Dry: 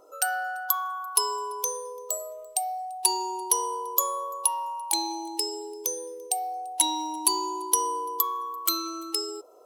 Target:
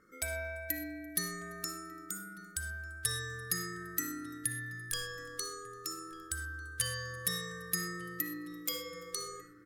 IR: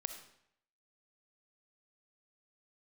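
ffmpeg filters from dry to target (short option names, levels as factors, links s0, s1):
-filter_complex "[0:a]aeval=exprs='val(0)*sin(2*PI*820*n/s)':c=same,asplit=2[s0][s1];[s1]adelay=1196,lowpass=f=1900:p=1,volume=0.15,asplit=2[s2][s3];[s3]adelay=1196,lowpass=f=1900:p=1,volume=0.53,asplit=2[s4][s5];[s5]adelay=1196,lowpass=f=1900:p=1,volume=0.53,asplit=2[s6][s7];[s7]adelay=1196,lowpass=f=1900:p=1,volume=0.53,asplit=2[s8][s9];[s9]adelay=1196,lowpass=f=1900:p=1,volume=0.53[s10];[s0][s2][s4][s6][s8][s10]amix=inputs=6:normalize=0[s11];[1:a]atrim=start_sample=2205,afade=t=out:st=0.18:d=0.01,atrim=end_sample=8379[s12];[s11][s12]afir=irnorm=-1:irlink=0,volume=0.501"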